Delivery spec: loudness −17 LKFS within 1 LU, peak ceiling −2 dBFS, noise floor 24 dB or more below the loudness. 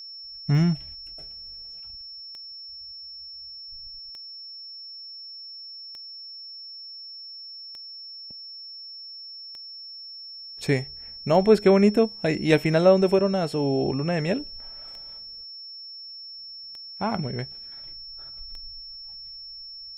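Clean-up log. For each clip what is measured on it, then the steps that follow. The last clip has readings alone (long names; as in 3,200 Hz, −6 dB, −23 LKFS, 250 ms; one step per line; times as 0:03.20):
number of clicks 11; interfering tone 5,400 Hz; level of the tone −38 dBFS; integrated loudness −28.0 LKFS; sample peak −5.0 dBFS; target loudness −17.0 LKFS
→ click removal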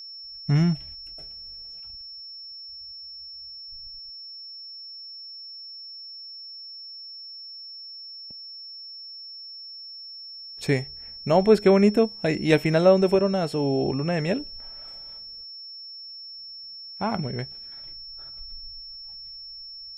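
number of clicks 0; interfering tone 5,400 Hz; level of the tone −38 dBFS
→ notch filter 5,400 Hz, Q 30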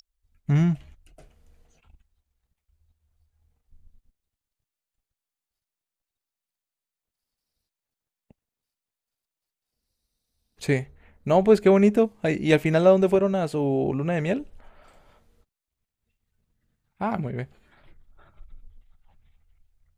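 interfering tone none found; integrated loudness −22.5 LKFS; sample peak −5.0 dBFS; target loudness −17.0 LKFS
→ level +5.5 dB
brickwall limiter −2 dBFS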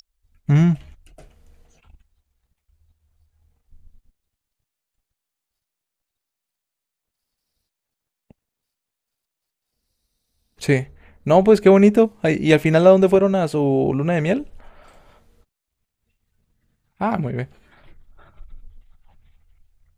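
integrated loudness −17.0 LKFS; sample peak −2.0 dBFS; background noise floor −84 dBFS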